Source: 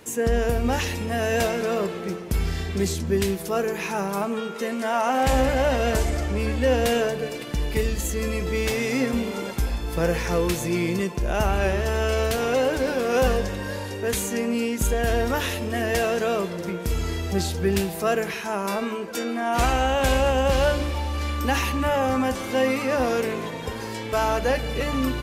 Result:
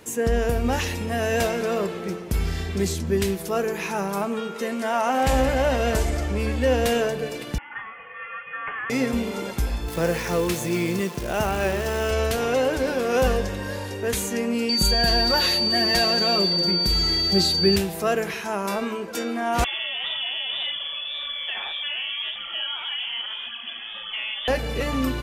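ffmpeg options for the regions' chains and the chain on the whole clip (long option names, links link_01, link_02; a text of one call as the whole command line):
ffmpeg -i in.wav -filter_complex "[0:a]asettb=1/sr,asplit=3[link_01][link_02][link_03];[link_01]atrim=end=7.584[link_04];[link_02]atrim=start=7.58:end=8.9,asetpts=PTS-STARTPTS,afade=type=in:duration=0.004:curve=qsin,afade=type=out:start_time=1.316:duration=0.004:curve=qsin,highpass=frequency=1200:width=0.5412,highpass=frequency=1200:width=1.3066,aecho=1:1:3:0.44,atrim=end_sample=58212,lowpass=frequency=3200:width_type=q:width=0.5098,lowpass=frequency=3200:width_type=q:width=0.6013,lowpass=frequency=3200:width_type=q:width=0.9,lowpass=frequency=3200:width_type=q:width=2.563,afreqshift=-3800[link_05];[link_03]atrim=start=8.896[link_06];[link_04][link_05]acrossfade=duration=0.004:curve1=hsin:curve2=qsin[link_07];[link_07][link_06]acrossfade=duration=0.004:curve1=qsin:curve2=hsin,asettb=1/sr,asplit=3[link_08][link_09][link_10];[link_08]atrim=end=9.884[link_11];[link_09]atrim=start=9.88:end=12.11,asetpts=PTS-STARTPTS,afade=type=in:duration=0.004:curve=qsin,afade=type=out:start_time=2.226:duration=0.004:curve=qsin,acrusher=bits=7:dc=4:mix=0:aa=0.000001,highpass=93[link_12];[link_10]atrim=start=12.106[link_13];[link_11][link_12]acrossfade=duration=0.004:curve1=hsin:curve2=qsin[link_14];[link_14][link_13]acrossfade=duration=0.004:curve1=qsin:curve2=hsin,asettb=1/sr,asplit=3[link_15][link_16][link_17];[link_15]atrim=end=14.694[link_18];[link_16]atrim=start=14.69:end=17.76,asetpts=PTS-STARTPTS,afade=type=in:duration=0.004:curve=qsin,afade=type=out:start_time=3.066:duration=0.004:curve=qsin,aeval=exprs='val(0)+0.0562*sin(2*PI*4600*n/s)':channel_layout=same,equalizer=frequency=4100:width=6.1:gain=9.5,aecho=1:1:5.5:0.63,atrim=end_sample=135387[link_19];[link_17]atrim=start=17.756[link_20];[link_18][link_19]acrossfade=duration=0.004:curve1=hsin:curve2=qsin[link_21];[link_21][link_20]acrossfade=duration=0.004:curve1=qsin:curve2=hsin,asettb=1/sr,asplit=3[link_22][link_23][link_24];[link_22]atrim=end=19.644[link_25];[link_23]atrim=start=19.64:end=24.48,asetpts=PTS-STARTPTS,afade=type=in:duration=0.004:curve=qsin,afade=type=out:start_time=4.836:duration=0.004:curve=qsin,lowpass=frequency=3000:width_type=q:width=0.5098,lowpass=frequency=3000:width_type=q:width=0.6013,lowpass=frequency=3000:width_type=q:width=0.9,lowpass=frequency=3000:width_type=q:width=2.563,afreqshift=-3500,acompressor=threshold=-25dB:ratio=2:attack=3.2:release=140:knee=1:detection=peak,flanger=delay=0.6:depth=8.4:regen=24:speed=1.8:shape=sinusoidal[link_26];[link_24]atrim=start=24.476[link_27];[link_25][link_26]acrossfade=duration=0.004:curve1=hsin:curve2=qsin[link_28];[link_28][link_27]acrossfade=duration=0.004:curve1=qsin:curve2=hsin" out.wav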